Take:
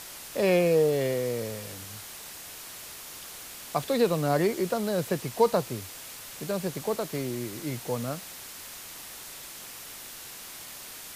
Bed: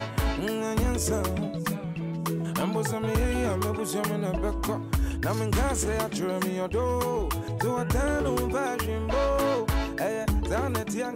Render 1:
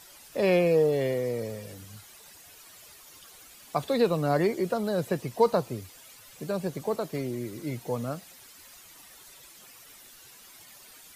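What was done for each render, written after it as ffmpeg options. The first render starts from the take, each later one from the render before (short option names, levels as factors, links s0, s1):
-af "afftdn=nr=12:nf=-43"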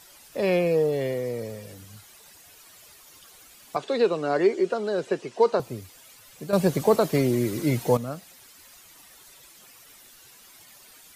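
-filter_complex "[0:a]asettb=1/sr,asplit=3[s0][s1][s2];[s0]atrim=end=3.764[s3];[s1]atrim=start=3.76:end=5.6,asetpts=PTS-STARTPTS,afade=t=in:d=0.004:c=qsin,afade=t=out:st=1.836:d=0.004:c=qsin,highpass=260,equalizer=f=390:t=q:w=4:g=8,equalizer=f=1500:t=q:w=4:g=4,equalizer=f=2800:t=q:w=4:g=4,lowpass=f=7900:w=0.5412,lowpass=f=7900:w=1.3066[s4];[s2]atrim=start=5.596[s5];[s3][s4]acrossfade=d=0.004:c1=hsin:c2=qsin[s6];[s6][s5]acrossfade=d=0.004:c1=qsin:c2=hsin,asplit=3[s7][s8][s9];[s7]atrim=end=6.532[s10];[s8]atrim=start=6.528:end=7.972,asetpts=PTS-STARTPTS,volume=3.16[s11];[s9]atrim=start=7.968[s12];[s10][s11]acrossfade=d=0.004:c1=hsin:c2=hsin[s13];[s13][s12]acrossfade=d=0.004:c1=hsin:c2=hsin"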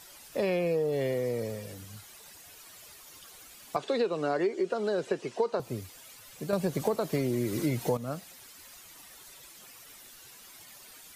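-af "acompressor=threshold=0.0562:ratio=6"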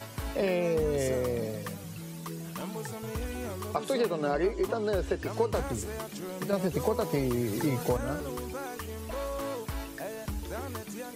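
-filter_complex "[1:a]volume=0.316[s0];[0:a][s0]amix=inputs=2:normalize=0"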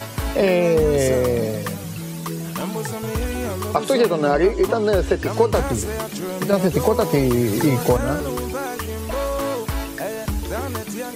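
-af "volume=3.55,alimiter=limit=0.708:level=0:latency=1"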